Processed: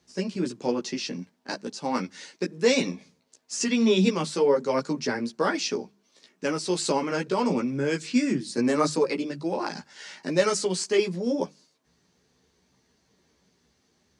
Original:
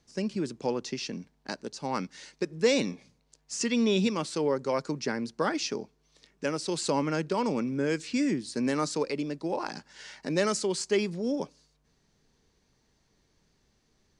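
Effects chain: HPF 99 Hz; notches 50/100/150/200 Hz; chorus voices 6, 0.94 Hz, delay 14 ms, depth 3 ms; gain +6.5 dB

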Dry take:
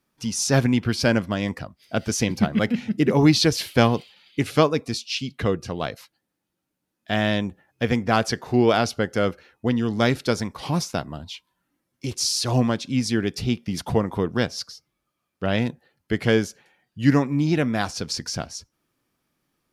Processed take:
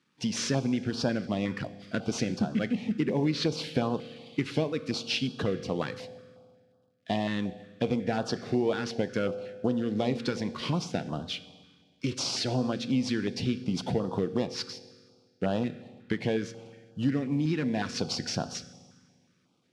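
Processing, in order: CVSD 64 kbps; compressor 6:1, threshold -27 dBFS, peak gain reduction 15 dB; BPF 140–4400 Hz; reverb RT60 1.7 s, pre-delay 3 ms, DRR 12 dB; stepped notch 5.5 Hz 670–2100 Hz; gain +3.5 dB

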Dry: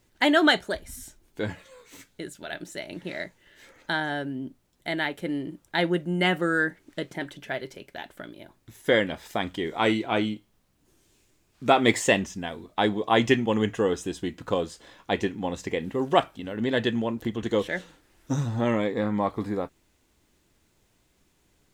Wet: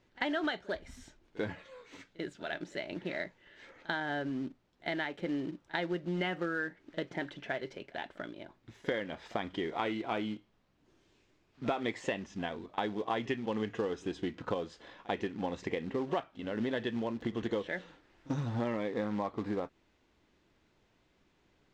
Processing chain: low shelf 150 Hz -7 dB; compressor 6:1, threshold -30 dBFS, peak gain reduction 15 dB; short-mantissa float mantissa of 2-bit; air absorption 170 m; on a send: reverse echo 42 ms -21 dB

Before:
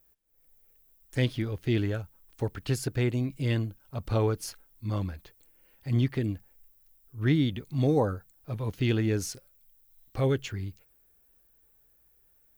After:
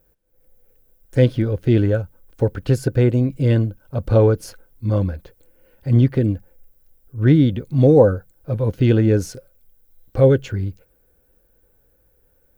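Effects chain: tilt shelf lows +5.5 dB, about 850 Hz; small resonant body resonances 520/1500 Hz, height 10 dB, ringing for 35 ms; gain +6 dB

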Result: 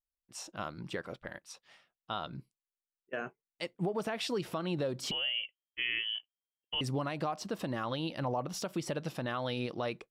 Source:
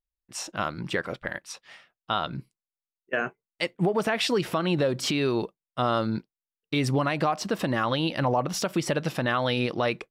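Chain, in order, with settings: bell 1900 Hz -4 dB 1.1 oct; 5.11–6.81 inverted band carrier 3200 Hz; gain -9 dB

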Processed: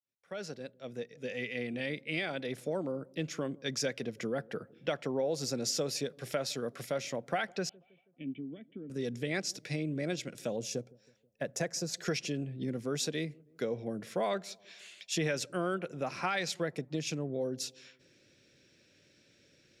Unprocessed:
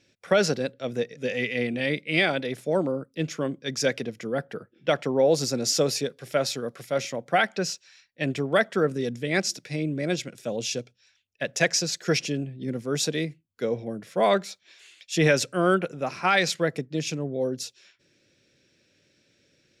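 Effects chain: opening faded in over 3.71 s; 10.58–11.94 bell 3100 Hz -13 dB 1.9 oct; compressor 3:1, threshold -33 dBFS, peak gain reduction 13 dB; 7.69–8.9 vocal tract filter i; dark delay 0.161 s, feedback 50%, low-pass 690 Hz, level -23.5 dB

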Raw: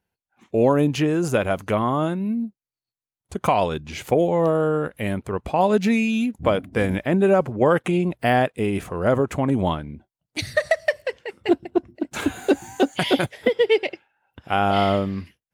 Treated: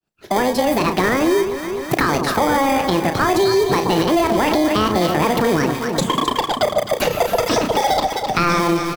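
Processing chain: opening faded in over 2.38 s; speed mistake 45 rpm record played at 78 rpm; in parallel at -4 dB: sample-and-hold 32×; on the sum: doubler 33 ms -11 dB; echo with dull and thin repeats by turns 0.129 s, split 1000 Hz, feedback 68%, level -10 dB; maximiser +13.5 dB; three-band squash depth 70%; gain -7 dB

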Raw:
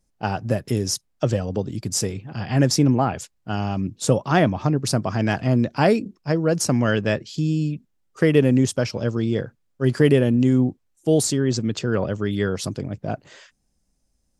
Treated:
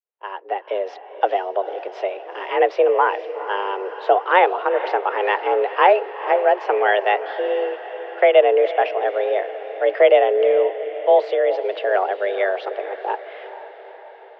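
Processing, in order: opening faded in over 0.91 s; diffused feedback echo 0.457 s, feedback 61%, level -13 dB; mistuned SSB +190 Hz 260–2900 Hz; gain +5 dB

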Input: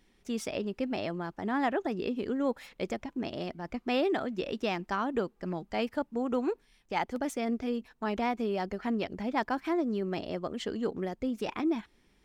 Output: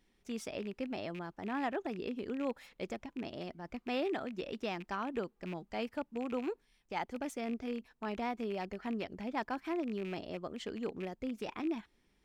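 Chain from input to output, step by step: rattling part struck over -39 dBFS, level -32 dBFS; gain -6.5 dB

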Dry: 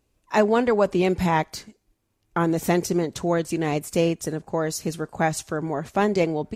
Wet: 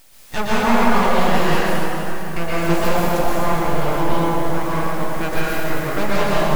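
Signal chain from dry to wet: 3.25–5.3 LPF 1900 Hz 12 dB/oct; added noise white -47 dBFS; full-wave rectifier; plate-style reverb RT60 3.7 s, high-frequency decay 0.65×, pre-delay 0.105 s, DRR -9 dB; gain -1.5 dB

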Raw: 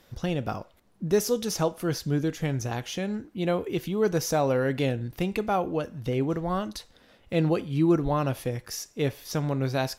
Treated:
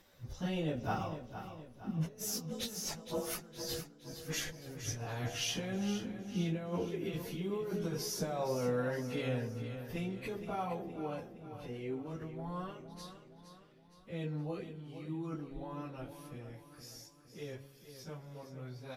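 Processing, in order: Doppler pass-by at 2.03, 11 m/s, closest 4.9 m; de-hum 69.01 Hz, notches 11; negative-ratio compressor -39 dBFS, ratio -0.5; plain phase-vocoder stretch 1.9×; feedback echo 0.465 s, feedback 48%, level -10.5 dB; on a send at -19.5 dB: reverb RT60 0.55 s, pre-delay 3 ms; on the sum: gain +4 dB

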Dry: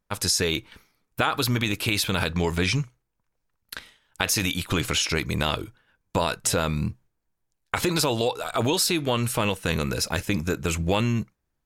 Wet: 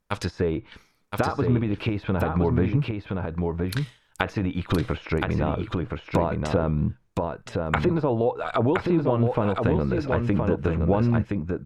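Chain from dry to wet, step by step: dynamic EQ 7800 Hz, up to -6 dB, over -38 dBFS, Q 0.79; treble ducked by the level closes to 860 Hz, closed at -21.5 dBFS; echo 1.019 s -4 dB; gain +2.5 dB

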